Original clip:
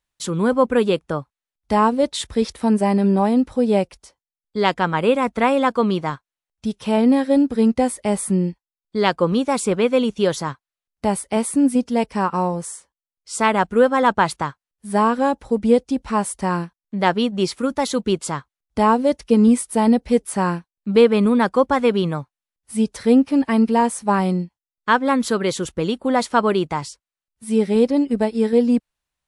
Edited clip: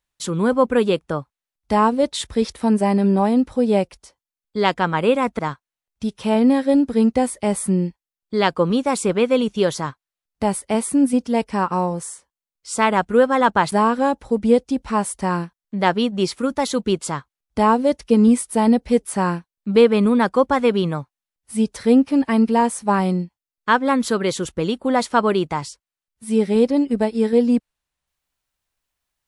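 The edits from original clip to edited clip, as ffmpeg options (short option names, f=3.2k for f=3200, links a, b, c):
-filter_complex "[0:a]asplit=3[a][b][c];[a]atrim=end=5.392[d];[b]atrim=start=6.008:end=14.342[e];[c]atrim=start=14.918[f];[d][e]acrossfade=d=0.004:c1=hsin:c2=hsin[g];[g][f]acrossfade=d=0.004:c1=hsin:c2=hsin"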